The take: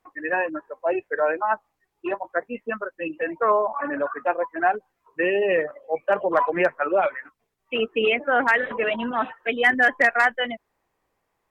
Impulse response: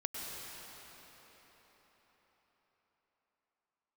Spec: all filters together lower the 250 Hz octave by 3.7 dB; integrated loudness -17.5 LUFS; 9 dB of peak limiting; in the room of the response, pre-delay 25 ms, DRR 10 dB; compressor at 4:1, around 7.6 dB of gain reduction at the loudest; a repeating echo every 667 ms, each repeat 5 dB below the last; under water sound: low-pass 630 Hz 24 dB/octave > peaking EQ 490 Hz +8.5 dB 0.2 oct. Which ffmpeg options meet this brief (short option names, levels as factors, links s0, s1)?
-filter_complex "[0:a]equalizer=f=250:t=o:g=-5.5,acompressor=threshold=0.0708:ratio=4,alimiter=limit=0.0794:level=0:latency=1,aecho=1:1:667|1334|2001|2668|3335|4002|4669:0.562|0.315|0.176|0.0988|0.0553|0.031|0.0173,asplit=2[s0][s1];[1:a]atrim=start_sample=2205,adelay=25[s2];[s1][s2]afir=irnorm=-1:irlink=0,volume=0.237[s3];[s0][s3]amix=inputs=2:normalize=0,lowpass=f=630:w=0.5412,lowpass=f=630:w=1.3066,equalizer=f=490:t=o:w=0.2:g=8.5,volume=4.73"